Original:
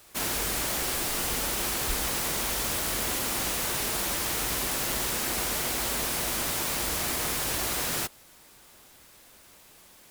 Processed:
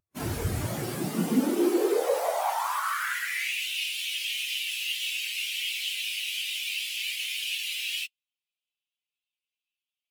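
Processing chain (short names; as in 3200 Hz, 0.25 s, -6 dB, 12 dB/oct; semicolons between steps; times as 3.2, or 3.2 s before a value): high-pass sweep 84 Hz -> 2700 Hz, 0.52–3.65; wavefolder -21 dBFS; spectral expander 2.5:1; gain +8 dB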